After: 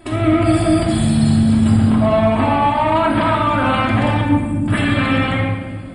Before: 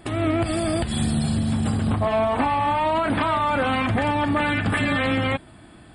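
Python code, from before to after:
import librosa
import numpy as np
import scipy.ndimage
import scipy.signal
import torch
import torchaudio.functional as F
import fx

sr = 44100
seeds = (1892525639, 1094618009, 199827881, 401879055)

y = fx.cheby2_bandstop(x, sr, low_hz=710.0, high_hz=3400.0, order=4, stop_db=50, at=(4.21, 4.68))
y = fx.room_shoebox(y, sr, seeds[0], volume_m3=1700.0, walls='mixed', distance_m=2.9)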